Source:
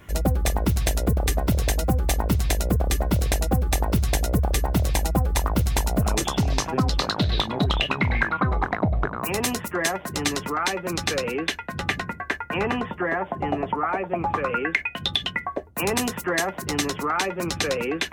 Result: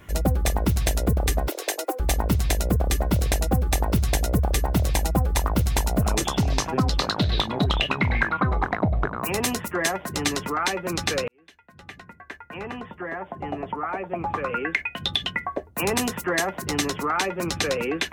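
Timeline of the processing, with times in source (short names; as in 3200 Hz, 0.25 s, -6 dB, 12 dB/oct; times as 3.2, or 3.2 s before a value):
1.48–2 steep high-pass 310 Hz 72 dB/oct
11.28–15.45 fade in linear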